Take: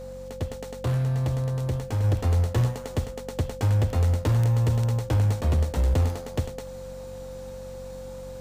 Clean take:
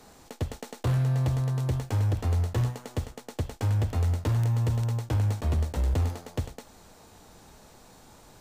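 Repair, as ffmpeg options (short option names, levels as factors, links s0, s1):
-af "bandreject=f=46.8:t=h:w=4,bandreject=f=93.6:t=h:w=4,bandreject=f=140.4:t=h:w=4,bandreject=f=187.2:t=h:w=4,bandreject=f=234:t=h:w=4,bandreject=f=520:w=30,asetnsamples=n=441:p=0,asendcmd='2.04 volume volume -3.5dB',volume=1"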